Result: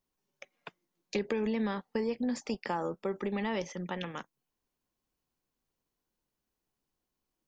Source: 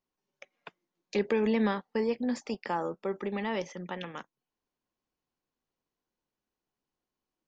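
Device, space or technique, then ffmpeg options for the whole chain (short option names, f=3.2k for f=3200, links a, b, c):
ASMR close-microphone chain: -af "lowshelf=f=140:g=7.5,acompressor=threshold=-28dB:ratio=6,highshelf=f=6.2k:g=6.5"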